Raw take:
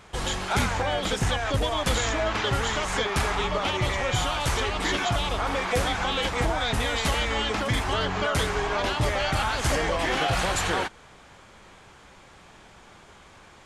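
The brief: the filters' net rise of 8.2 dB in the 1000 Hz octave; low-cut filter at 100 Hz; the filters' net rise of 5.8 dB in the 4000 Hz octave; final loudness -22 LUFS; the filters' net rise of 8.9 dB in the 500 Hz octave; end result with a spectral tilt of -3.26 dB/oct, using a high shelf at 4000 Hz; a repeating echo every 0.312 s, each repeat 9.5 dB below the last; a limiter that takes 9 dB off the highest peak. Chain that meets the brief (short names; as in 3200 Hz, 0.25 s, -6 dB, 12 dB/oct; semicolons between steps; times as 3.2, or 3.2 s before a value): HPF 100 Hz; bell 500 Hz +8.5 dB; bell 1000 Hz +7.5 dB; high shelf 4000 Hz -3 dB; bell 4000 Hz +8.5 dB; limiter -14.5 dBFS; feedback echo 0.312 s, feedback 33%, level -9.5 dB; gain +0.5 dB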